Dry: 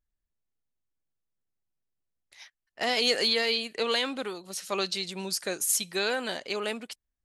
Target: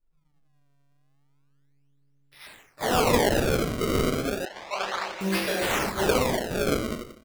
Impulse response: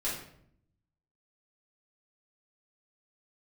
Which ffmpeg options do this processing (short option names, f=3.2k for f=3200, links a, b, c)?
-filter_complex "[0:a]bandreject=f=115.8:t=h:w=4,bandreject=f=231.6:t=h:w=4,bandreject=f=347.4:t=h:w=4,bandreject=f=463.2:t=h:w=4,bandreject=f=579:t=h:w=4,bandreject=f=694.8:t=h:w=4,bandreject=f=810.6:t=h:w=4,bandreject=f=926.4:t=h:w=4,bandreject=f=1.0422k:t=h:w=4,bandreject=f=1.158k:t=h:w=4,bandreject=f=1.2738k:t=h:w=4,bandreject=f=1.3896k:t=h:w=4,bandreject=f=1.5054k:t=h:w=4,bandreject=f=1.6212k:t=h:w=4,bandreject=f=1.737k:t=h:w=4,bandreject=f=1.8528k:t=h:w=4,bandreject=f=1.9686k:t=h:w=4,bandreject=f=2.0844k:t=h:w=4,bandreject=f=2.2002k:t=h:w=4,bandreject=f=2.316k:t=h:w=4,bandreject=f=2.4318k:t=h:w=4,bandreject=f=2.5476k:t=h:w=4,bandreject=f=2.6634k:t=h:w=4,bandreject=f=2.7792k:t=h:w=4,bandreject=f=2.895k:t=h:w=4,bandreject=f=3.0108k:t=h:w=4,bandreject=f=3.1266k:t=h:w=4[a];[1:a]atrim=start_sample=2205[b];[a][b]afir=irnorm=-1:irlink=0,acrossover=split=2300[c][d];[d]asoftclip=type=tanh:threshold=-21.5dB[e];[c][e]amix=inputs=2:normalize=0,asplit=5[f][g][h][i][j];[g]adelay=88,afreqshift=140,volume=-7dB[k];[h]adelay=176,afreqshift=280,volume=-16.6dB[l];[i]adelay=264,afreqshift=420,volume=-26.3dB[m];[j]adelay=352,afreqshift=560,volume=-35.9dB[n];[f][k][l][m][n]amix=inputs=5:normalize=0,acrusher=samples=29:mix=1:aa=0.000001:lfo=1:lforange=46.4:lforate=0.32,asettb=1/sr,asplit=3[o][p][q];[o]atrim=end=4.454[r];[p]atrim=start=4.45:end=5.21,asetpts=PTS-STARTPTS,afade=t=in:d=0.004:c=qsin,afade=t=out:st=0.756:d=0.004:c=qsin,acrossover=split=590 6100:gain=0.0794 1 0.0794[s][t][u];[s][t][u]amix=inputs=3:normalize=0[v];[q]atrim=start=5.206[w];[r][v]acrossfade=d=0.004:c1=hsin:c2=qsin[x];[x][w]acrossfade=d=0.004:c1=qsin:c2=hsin"